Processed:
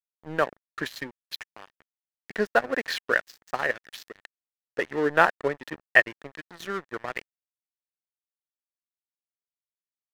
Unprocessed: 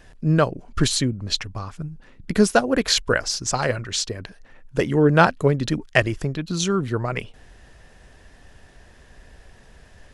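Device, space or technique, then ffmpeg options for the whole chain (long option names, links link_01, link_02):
pocket radio on a weak battery: -af "highpass=400,lowpass=3000,aeval=exprs='sgn(val(0))*max(abs(val(0))-0.0237,0)':channel_layout=same,equalizer=frequency=1800:width_type=o:width=0.26:gain=10,volume=-3dB"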